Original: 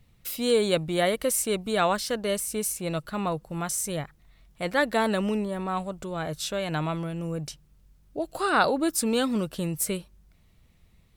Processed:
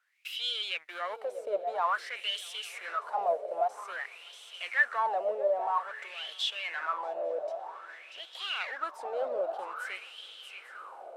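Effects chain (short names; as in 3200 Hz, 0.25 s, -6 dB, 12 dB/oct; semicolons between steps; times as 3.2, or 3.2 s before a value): HPF 450 Hz 24 dB/oct; in parallel at -11.5 dB: fuzz box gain 42 dB, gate -47 dBFS; on the sum: diffused feedback echo 1.155 s, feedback 59%, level -14 dB; added noise blue -54 dBFS; swung echo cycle 0.85 s, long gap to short 3:1, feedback 35%, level -13 dB; wah 0.51 Hz 590–3300 Hz, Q 9.8; gain +3 dB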